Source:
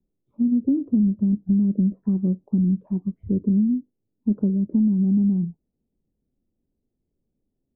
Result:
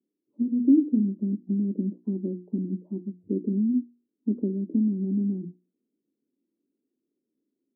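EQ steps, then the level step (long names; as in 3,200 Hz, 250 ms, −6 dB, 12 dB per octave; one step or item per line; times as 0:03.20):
four-pole ladder band-pass 370 Hz, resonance 45%
parametric band 270 Hz +11 dB 2.2 octaves
mains-hum notches 60/120/180/240/300/360 Hz
0.0 dB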